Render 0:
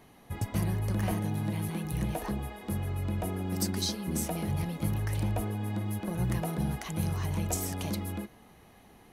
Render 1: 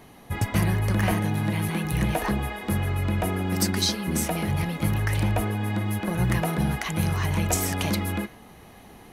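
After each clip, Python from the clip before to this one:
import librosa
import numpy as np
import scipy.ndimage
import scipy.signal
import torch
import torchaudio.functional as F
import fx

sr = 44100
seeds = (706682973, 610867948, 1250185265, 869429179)

y = fx.dynamic_eq(x, sr, hz=1900.0, q=0.77, threshold_db=-55.0, ratio=4.0, max_db=7)
y = fx.rider(y, sr, range_db=3, speed_s=2.0)
y = y * 10.0 ** (6.0 / 20.0)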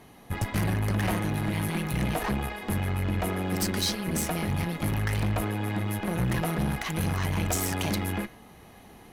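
y = fx.tube_stage(x, sr, drive_db=24.0, bias=0.75)
y = y * 10.0 ** (2.0 / 20.0)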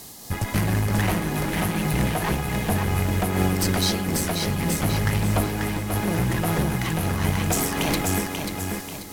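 y = fx.dmg_noise_band(x, sr, seeds[0], low_hz=3700.0, high_hz=16000.0, level_db=-47.0)
y = fx.echo_feedback(y, sr, ms=538, feedback_pct=38, wet_db=-3.5)
y = fx.am_noise(y, sr, seeds[1], hz=5.7, depth_pct=55)
y = y * 10.0 ** (7.0 / 20.0)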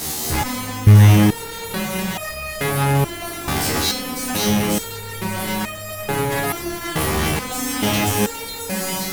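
y = fx.fuzz(x, sr, gain_db=43.0, gate_db=-44.0)
y = fx.room_flutter(y, sr, wall_m=4.9, rt60_s=0.36)
y = fx.resonator_held(y, sr, hz=2.3, low_hz=77.0, high_hz=620.0)
y = y * 10.0 ** (2.5 / 20.0)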